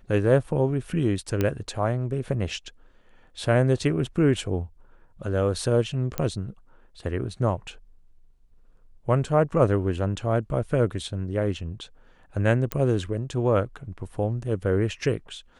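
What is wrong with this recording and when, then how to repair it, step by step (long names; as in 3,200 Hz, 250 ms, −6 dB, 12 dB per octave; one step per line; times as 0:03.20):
0:01.41: click −11 dBFS
0:06.18: click −10 dBFS
0:12.72: click −11 dBFS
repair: click removal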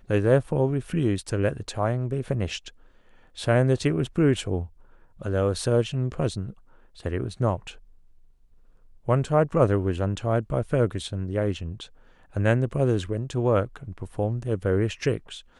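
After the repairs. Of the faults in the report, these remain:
none of them is left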